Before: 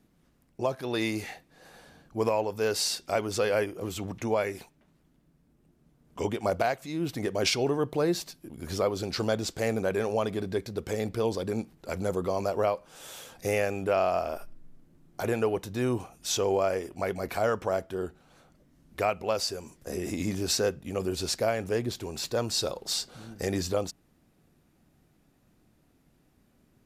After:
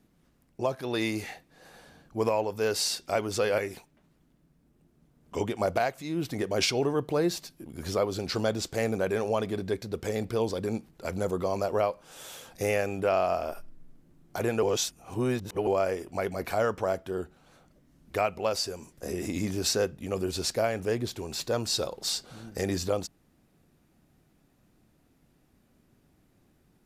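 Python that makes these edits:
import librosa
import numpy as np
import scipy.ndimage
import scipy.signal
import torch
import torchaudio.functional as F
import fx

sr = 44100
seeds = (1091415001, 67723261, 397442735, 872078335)

y = fx.edit(x, sr, fx.cut(start_s=3.58, length_s=0.84),
    fx.reverse_span(start_s=15.47, length_s=1.04), tone=tone)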